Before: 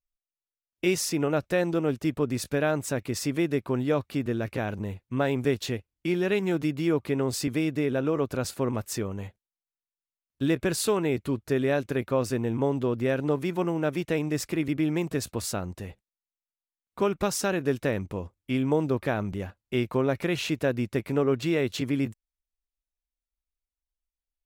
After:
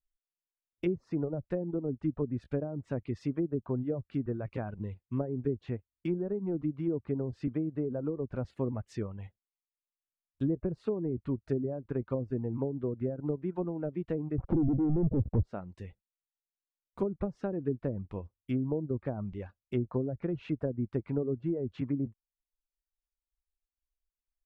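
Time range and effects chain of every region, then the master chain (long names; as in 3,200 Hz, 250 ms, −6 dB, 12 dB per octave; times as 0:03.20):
0:14.38–0:15.43: Gaussian smoothing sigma 10 samples + leveller curve on the samples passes 5
whole clip: treble cut that deepens with the level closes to 460 Hz, closed at −21 dBFS; reverb reduction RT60 1.1 s; spectral tilt −2 dB per octave; level −7.5 dB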